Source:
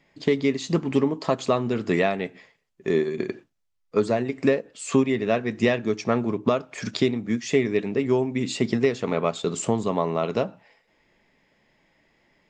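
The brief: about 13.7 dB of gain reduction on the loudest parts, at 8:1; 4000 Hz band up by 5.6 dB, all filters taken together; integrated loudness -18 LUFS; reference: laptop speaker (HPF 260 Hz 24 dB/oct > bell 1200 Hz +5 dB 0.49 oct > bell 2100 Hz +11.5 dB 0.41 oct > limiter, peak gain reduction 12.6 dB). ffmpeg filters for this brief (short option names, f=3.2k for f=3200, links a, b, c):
-af "equalizer=f=4k:t=o:g=5.5,acompressor=threshold=-30dB:ratio=8,highpass=f=260:w=0.5412,highpass=f=260:w=1.3066,equalizer=f=1.2k:t=o:w=0.49:g=5,equalizer=f=2.1k:t=o:w=0.41:g=11.5,volume=19dB,alimiter=limit=-6.5dB:level=0:latency=1"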